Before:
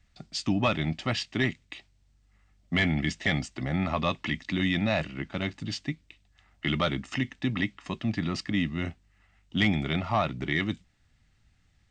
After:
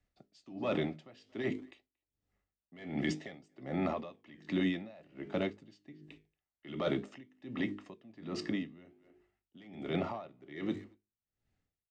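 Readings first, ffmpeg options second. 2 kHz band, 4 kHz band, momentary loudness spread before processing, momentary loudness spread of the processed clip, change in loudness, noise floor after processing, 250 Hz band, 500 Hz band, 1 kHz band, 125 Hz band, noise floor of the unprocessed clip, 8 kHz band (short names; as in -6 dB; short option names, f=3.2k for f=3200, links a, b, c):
-14.5 dB, -15.0 dB, 9 LU, 19 LU, -8.5 dB, under -85 dBFS, -8.0 dB, -4.5 dB, -11.5 dB, -13.5 dB, -66 dBFS, under -10 dB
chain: -filter_complex "[0:a]agate=range=-10dB:threshold=-54dB:ratio=16:detection=peak,equalizer=f=440:w=0.82:g=14,bandreject=f=51.17:t=h:w=4,bandreject=f=102.34:t=h:w=4,bandreject=f=153.51:t=h:w=4,bandreject=f=204.68:t=h:w=4,bandreject=f=255.85:t=h:w=4,bandreject=f=307.02:t=h:w=4,bandreject=f=358.19:t=h:w=4,bandreject=f=409.36:t=h:w=4,bandreject=f=460.53:t=h:w=4,acrossover=split=110|1000[a][b][c];[a]acompressor=threshold=-51dB:ratio=6[d];[d][b][c]amix=inputs=3:normalize=0,alimiter=limit=-16dB:level=0:latency=1:release=30,flanger=delay=8.1:depth=7:regen=-78:speed=0.53:shape=sinusoidal,asplit=2[e][f];[f]adelay=230,highpass=300,lowpass=3.4k,asoftclip=type=hard:threshold=-28dB,volume=-22dB[g];[e][g]amix=inputs=2:normalize=0,aeval=exprs='val(0)*pow(10,-25*(0.5-0.5*cos(2*PI*1.3*n/s))/20)':c=same,volume=-1.5dB"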